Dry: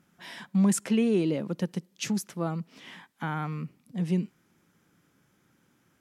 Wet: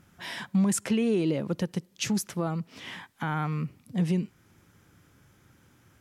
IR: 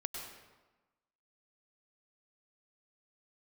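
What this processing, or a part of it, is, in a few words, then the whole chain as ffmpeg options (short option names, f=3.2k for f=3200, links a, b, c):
car stereo with a boomy subwoofer: -af "lowshelf=f=130:t=q:w=1.5:g=8.5,alimiter=limit=-23.5dB:level=0:latency=1:release=359,volume=6dB"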